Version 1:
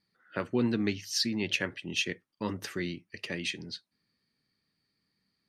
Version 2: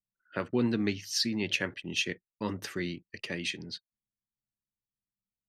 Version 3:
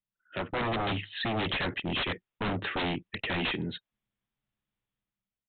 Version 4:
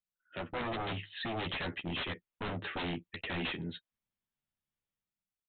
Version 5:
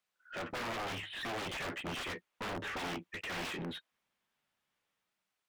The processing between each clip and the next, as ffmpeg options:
-af "anlmdn=0.000398"
-af "dynaudnorm=f=120:g=9:m=3.16,aresample=8000,aeval=exprs='0.0562*(abs(mod(val(0)/0.0562+3,4)-2)-1)':c=same,aresample=44100"
-filter_complex "[0:a]asplit=2[s0][s1];[s1]adelay=12,volume=0.447[s2];[s0][s2]amix=inputs=2:normalize=0,volume=0.447"
-filter_complex "[0:a]aeval=exprs='(mod(35.5*val(0)+1,2)-1)/35.5':c=same,asplit=2[s0][s1];[s1]highpass=f=720:p=1,volume=15.8,asoftclip=type=tanh:threshold=0.0282[s2];[s0][s2]amix=inputs=2:normalize=0,lowpass=f=2300:p=1,volume=0.501,volume=0.794"

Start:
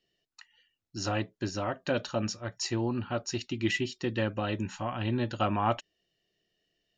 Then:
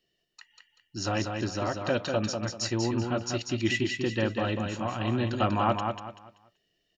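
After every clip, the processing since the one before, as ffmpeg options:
-af "aecho=1:1:192|384|576|768:0.562|0.169|0.0506|0.0152,volume=1.19"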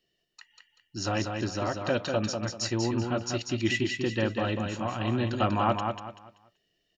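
-af anull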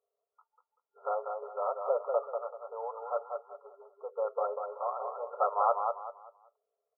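-af "afftfilt=real='re*between(b*sr/4096,400,1400)':imag='im*between(b*sr/4096,400,1400)':win_size=4096:overlap=0.75"

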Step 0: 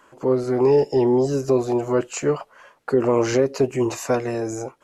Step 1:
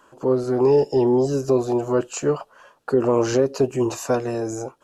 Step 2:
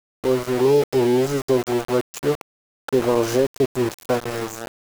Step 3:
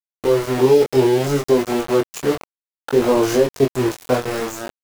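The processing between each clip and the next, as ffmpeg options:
-af "equalizer=f=2100:w=4.9:g=-12"
-af "aeval=exprs='val(0)*gte(abs(val(0)),0.0631)':c=same"
-af "flanger=delay=20:depth=3.7:speed=0.62,volume=2"

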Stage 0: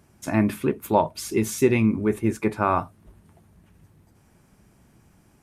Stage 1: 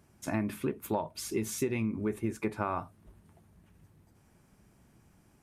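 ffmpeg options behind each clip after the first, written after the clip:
-af "acompressor=threshold=0.0794:ratio=6,volume=0.531"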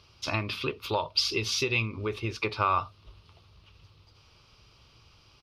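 -af "firequalizer=gain_entry='entry(110,0);entry(190,-15);entry(480,0);entry(710,-6);entry(1200,7);entry(1700,-7);entry(2700,13);entry(4900,15);entry(7400,-14)':delay=0.05:min_phase=1,volume=1.88"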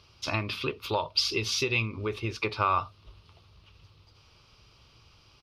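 -af anull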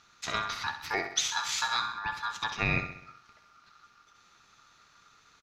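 -af "aecho=1:1:65|130|195|260|325|390:0.316|0.168|0.0888|0.0471|0.025|0.0132,aeval=exprs='val(0)*sin(2*PI*1300*n/s)':c=same"

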